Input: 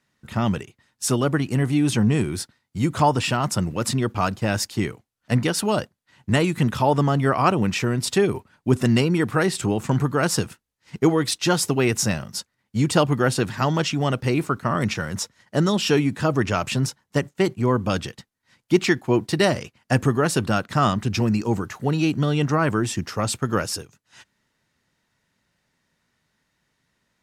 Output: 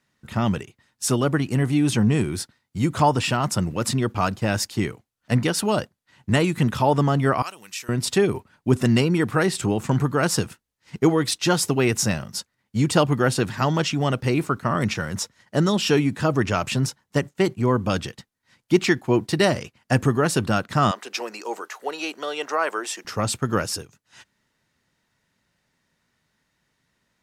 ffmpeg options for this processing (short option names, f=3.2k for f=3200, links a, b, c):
-filter_complex "[0:a]asettb=1/sr,asplit=3[a][b][c];[a]atrim=end=7.424[d];[b]atrim=start=7.42:end=7.89,asetpts=PTS-STARTPTS,afade=t=in:d=0.004:c=qsin,afade=t=out:st=0.466:d=0.004:c=qsin,aderivative[e];[c]atrim=start=7.886[f];[d][e]acrossfade=d=0.004:c1=hsin:c2=qsin[g];[g][f]acrossfade=d=0.004:c1=qsin:c2=hsin,asettb=1/sr,asplit=3[h][i][j];[h]atrim=end=20.914[k];[i]atrim=start=20.91:end=23.05,asetpts=PTS-STARTPTS,afade=t=in:d=0.004:c=qsin,afade=t=out:st=2.136:d=0.004:c=qsin,highpass=f=450:w=0.5412,highpass=f=450:w=1.3066[l];[j]atrim=start=23.046[m];[k][l]acrossfade=d=0.004:c1=hsin:c2=qsin[n];[n][m]acrossfade=d=0.004:c1=qsin:c2=hsin"